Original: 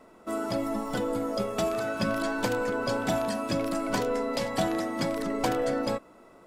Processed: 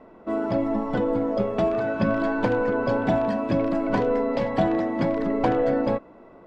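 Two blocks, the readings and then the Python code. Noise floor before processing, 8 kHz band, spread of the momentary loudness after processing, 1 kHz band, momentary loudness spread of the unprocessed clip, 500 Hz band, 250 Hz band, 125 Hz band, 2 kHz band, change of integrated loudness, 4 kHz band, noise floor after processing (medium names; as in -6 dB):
-54 dBFS, under -15 dB, 2 LU, +4.0 dB, 3 LU, +5.5 dB, +6.5 dB, +6.5 dB, +2.0 dB, +5.0 dB, -6.5 dB, -49 dBFS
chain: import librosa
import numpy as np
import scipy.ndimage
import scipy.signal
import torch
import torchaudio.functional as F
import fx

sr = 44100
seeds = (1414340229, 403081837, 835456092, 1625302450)

y = scipy.signal.sosfilt(scipy.signal.butter(2, 3200.0, 'lowpass', fs=sr, output='sos'), x)
y = fx.high_shelf(y, sr, hz=2000.0, db=-10.0)
y = fx.notch(y, sr, hz=1300.0, q=15.0)
y = y * 10.0 ** (6.5 / 20.0)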